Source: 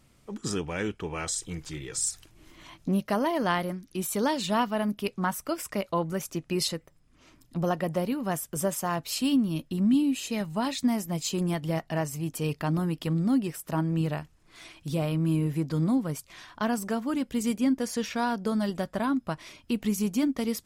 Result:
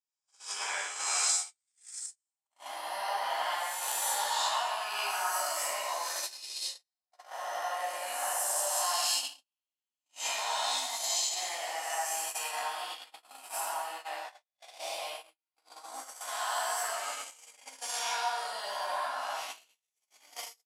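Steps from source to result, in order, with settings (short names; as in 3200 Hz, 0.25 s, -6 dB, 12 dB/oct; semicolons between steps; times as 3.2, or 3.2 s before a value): spectral swells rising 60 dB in 1.91 s; compressor 10:1, threshold -24 dBFS, peak gain reduction 7 dB; resonant high-pass 770 Hz, resonance Q 3.4; air absorption 61 m; doubler 15 ms -7 dB; plate-style reverb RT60 1.4 s, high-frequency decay 0.8×, DRR -4 dB; gate -25 dBFS, range -56 dB; differentiator; gain +3 dB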